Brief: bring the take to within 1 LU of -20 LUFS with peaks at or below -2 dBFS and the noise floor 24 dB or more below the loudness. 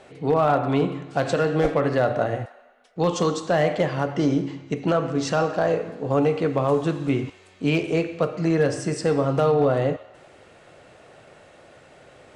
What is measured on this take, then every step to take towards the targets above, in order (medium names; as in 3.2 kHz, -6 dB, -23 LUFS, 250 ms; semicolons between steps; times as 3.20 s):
clipped samples 0.3%; clipping level -12.0 dBFS; loudness -23.0 LUFS; peak level -12.0 dBFS; loudness target -20.0 LUFS
-> clip repair -12 dBFS; trim +3 dB